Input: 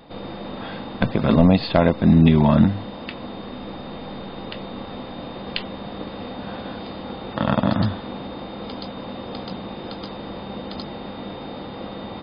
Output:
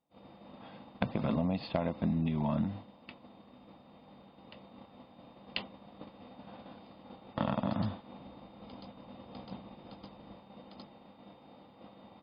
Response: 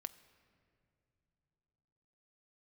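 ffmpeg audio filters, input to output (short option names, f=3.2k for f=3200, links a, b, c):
-af "asetnsamples=n=441:p=0,asendcmd='8.19 highpass f 43;10.36 highpass f 180',highpass=f=140:p=1,agate=range=-33dB:threshold=-22dB:ratio=3:detection=peak,equalizer=f=400:t=o:w=0.67:g=-7,equalizer=f=1.6k:t=o:w=0.67:g=-8,equalizer=f=4k:t=o:w=0.67:g=-7,acompressor=threshold=-28dB:ratio=10,aresample=11025,aresample=44100" -ar 48000 -c:a libopus -b:a 64k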